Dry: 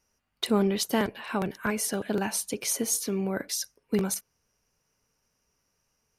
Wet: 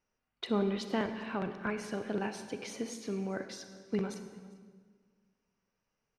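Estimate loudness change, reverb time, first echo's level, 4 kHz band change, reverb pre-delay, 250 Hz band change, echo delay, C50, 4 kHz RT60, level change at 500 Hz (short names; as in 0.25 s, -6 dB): -8.0 dB, 1.6 s, -23.0 dB, -10.5 dB, 31 ms, -6.0 dB, 0.396 s, 8.5 dB, 1.3 s, -5.5 dB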